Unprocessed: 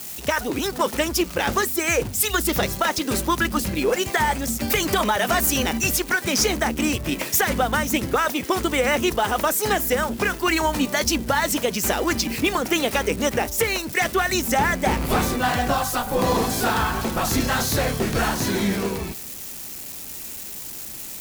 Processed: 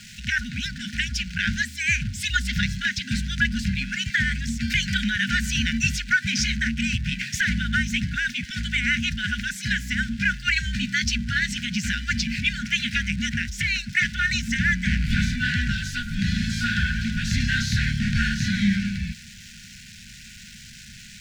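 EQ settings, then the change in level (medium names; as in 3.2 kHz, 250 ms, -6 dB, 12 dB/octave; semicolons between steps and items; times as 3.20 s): brick-wall FIR band-stop 240–1400 Hz; distance through air 140 m; +3.5 dB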